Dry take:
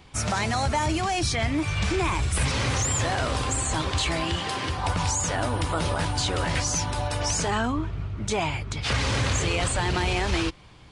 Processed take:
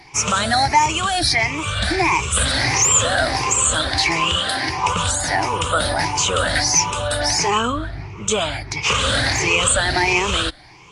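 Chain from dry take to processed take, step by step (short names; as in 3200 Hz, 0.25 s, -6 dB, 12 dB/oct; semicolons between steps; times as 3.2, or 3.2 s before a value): moving spectral ripple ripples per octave 0.76, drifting +1.5 Hz, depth 15 dB; low shelf 380 Hz -9.5 dB; gain +7 dB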